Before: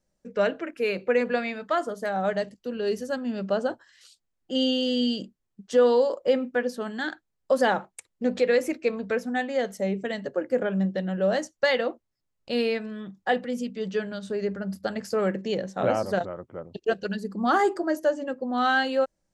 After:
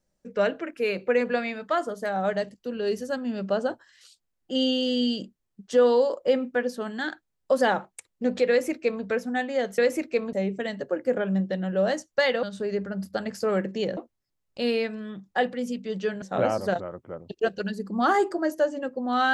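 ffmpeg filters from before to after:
ffmpeg -i in.wav -filter_complex "[0:a]asplit=6[link_01][link_02][link_03][link_04][link_05][link_06];[link_01]atrim=end=9.782[link_07];[link_02]atrim=start=8.488:end=9.042[link_08];[link_03]atrim=start=9.778:end=11.882[link_09];[link_04]atrim=start=14.128:end=15.672[link_10];[link_05]atrim=start=11.878:end=14.132[link_11];[link_06]atrim=start=15.668[link_12];[link_07][link_08]acrossfade=duration=0.004:curve1=hsin:curve2=hsin[link_13];[link_13][link_09]acrossfade=duration=0.004:curve1=hsin:curve2=hsin[link_14];[link_14][link_10]acrossfade=duration=0.004:curve1=hsin:curve2=hsin[link_15];[link_15][link_11]acrossfade=duration=0.004:curve1=hsin:curve2=hsin[link_16];[link_16][link_12]acrossfade=duration=0.004:curve1=hsin:curve2=hsin" out.wav

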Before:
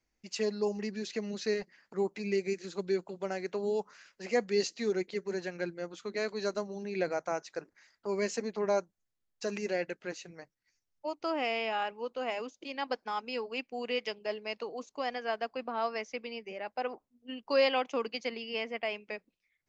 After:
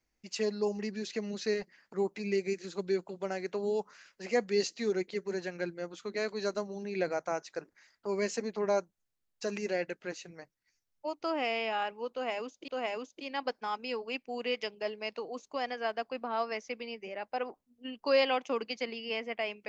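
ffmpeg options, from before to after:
ffmpeg -i in.wav -filter_complex "[0:a]asplit=2[link_01][link_02];[link_01]atrim=end=12.682[link_03];[link_02]atrim=start=12.118[link_04];[link_03][link_04]acrossfade=duration=0.004:curve1=hsin:curve2=hsin" out.wav

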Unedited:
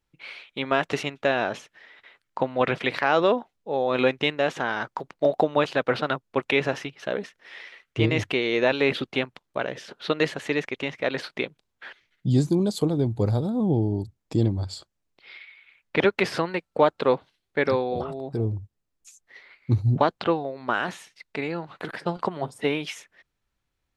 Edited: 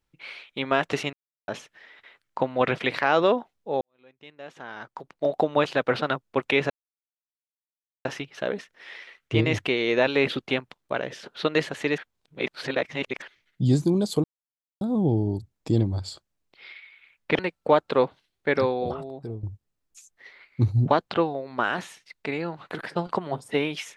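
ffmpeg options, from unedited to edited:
ffmpeg -i in.wav -filter_complex "[0:a]asplit=11[link_01][link_02][link_03][link_04][link_05][link_06][link_07][link_08][link_09][link_10][link_11];[link_01]atrim=end=1.13,asetpts=PTS-STARTPTS,afade=type=out:start_time=1.126:duration=0.004:curve=hsin[link_12];[link_02]atrim=start=1.13:end=1.48,asetpts=PTS-STARTPTS,volume=0[link_13];[link_03]atrim=start=1.48:end=3.81,asetpts=PTS-STARTPTS,afade=type=in:duration=0.004:curve=hsin,afade=type=out:start_time=2.326:duration=0.004:curve=hsin[link_14];[link_04]atrim=start=3.81:end=6.7,asetpts=PTS-STARTPTS,afade=type=in:duration=1.76:curve=qua,afade=type=out:start_time=2.886:duration=0.004:curve=hsin,apad=pad_dur=1.35[link_15];[link_05]atrim=start=6.7:end=10.632,asetpts=PTS-STARTPTS,afade=type=in:duration=0.004:curve=hsin[link_16];[link_06]atrim=start=10.628:end=11.872,asetpts=PTS-STARTPTS,areverse[link_17];[link_07]atrim=start=11.868:end=12.89,asetpts=PTS-STARTPTS,afade=type=out:start_time=1.018:duration=0.004:curve=hsin[link_18];[link_08]atrim=start=12.89:end=13.46,asetpts=PTS-STARTPTS,volume=0[link_19];[link_09]atrim=start=13.46:end=16.042,asetpts=PTS-STARTPTS,afade=type=in:duration=0.004:curve=hsin[link_20];[link_10]atrim=start=16.488:end=18.53,asetpts=PTS-STARTPTS,afade=type=out:start_time=1.462:duration=0.58:silence=0.199526[link_21];[link_11]atrim=start=18.53,asetpts=PTS-STARTPTS,afade=type=in:duration=0.004:curve=hsin:silence=0.199526[link_22];[link_12][link_13][link_14][link_15][link_16]concat=n=5:v=0:a=1[link_23];[link_23][link_17]acrossfade=duration=0.004:curve1=hsin:curve2=hsin[link_24];[link_18][link_19][link_20]concat=n=3:v=0:a=1[link_25];[link_24][link_25]acrossfade=duration=0.004:curve1=hsin:curve2=hsin[link_26];[link_21][link_22]concat=n=2:v=0:a=1[link_27];[link_26][link_27]acrossfade=duration=0.004:curve1=hsin:curve2=hsin" out.wav

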